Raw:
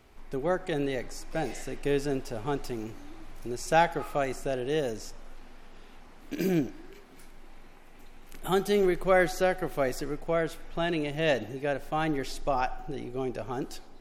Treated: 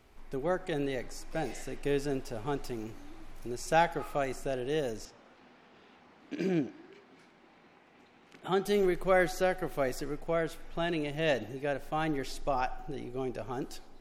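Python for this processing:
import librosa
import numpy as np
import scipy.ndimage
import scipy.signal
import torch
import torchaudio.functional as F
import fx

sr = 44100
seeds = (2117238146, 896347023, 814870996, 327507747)

y = fx.bandpass_edges(x, sr, low_hz=130.0, high_hz=4600.0, at=(5.05, 8.65))
y = y * 10.0 ** (-3.0 / 20.0)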